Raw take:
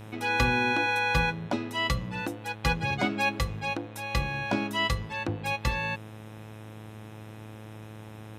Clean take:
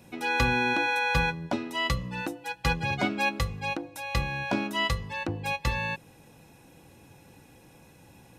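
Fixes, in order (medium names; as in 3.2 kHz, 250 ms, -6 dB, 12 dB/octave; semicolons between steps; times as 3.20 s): de-hum 108.2 Hz, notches 36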